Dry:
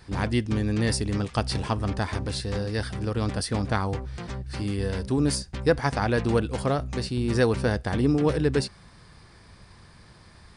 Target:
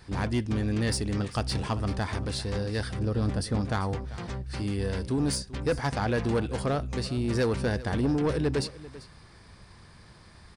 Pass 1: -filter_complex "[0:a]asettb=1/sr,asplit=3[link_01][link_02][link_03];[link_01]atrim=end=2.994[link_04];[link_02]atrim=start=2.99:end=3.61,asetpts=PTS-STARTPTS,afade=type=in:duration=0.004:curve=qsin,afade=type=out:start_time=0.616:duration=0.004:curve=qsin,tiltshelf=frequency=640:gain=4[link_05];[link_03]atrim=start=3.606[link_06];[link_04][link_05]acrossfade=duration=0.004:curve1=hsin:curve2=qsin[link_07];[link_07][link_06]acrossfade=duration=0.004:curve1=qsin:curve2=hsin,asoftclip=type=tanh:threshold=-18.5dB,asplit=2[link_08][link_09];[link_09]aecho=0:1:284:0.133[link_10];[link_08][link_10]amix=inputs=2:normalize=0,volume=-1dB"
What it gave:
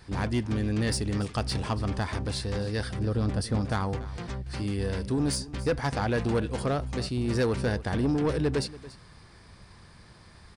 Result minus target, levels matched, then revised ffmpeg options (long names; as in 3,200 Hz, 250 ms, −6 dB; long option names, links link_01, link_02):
echo 108 ms early
-filter_complex "[0:a]asettb=1/sr,asplit=3[link_01][link_02][link_03];[link_01]atrim=end=2.994[link_04];[link_02]atrim=start=2.99:end=3.61,asetpts=PTS-STARTPTS,afade=type=in:duration=0.004:curve=qsin,afade=type=out:start_time=0.616:duration=0.004:curve=qsin,tiltshelf=frequency=640:gain=4[link_05];[link_03]atrim=start=3.606[link_06];[link_04][link_05]acrossfade=duration=0.004:curve1=hsin:curve2=qsin[link_07];[link_07][link_06]acrossfade=duration=0.004:curve1=qsin:curve2=hsin,asoftclip=type=tanh:threshold=-18.5dB,asplit=2[link_08][link_09];[link_09]aecho=0:1:392:0.133[link_10];[link_08][link_10]amix=inputs=2:normalize=0,volume=-1dB"